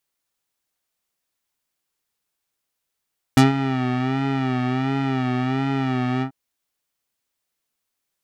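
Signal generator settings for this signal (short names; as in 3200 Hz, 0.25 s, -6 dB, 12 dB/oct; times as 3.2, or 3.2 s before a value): synth patch with vibrato C4, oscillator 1 square, interval +7 st, detune 23 cents, oscillator 2 level -11 dB, sub -2.5 dB, noise -19 dB, filter lowpass, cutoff 990 Hz, Q 0.93, filter envelope 4 oct, filter decay 0.07 s, filter sustain 35%, attack 2 ms, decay 0.15 s, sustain -12 dB, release 0.09 s, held 2.85 s, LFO 1.4 Hz, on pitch 75 cents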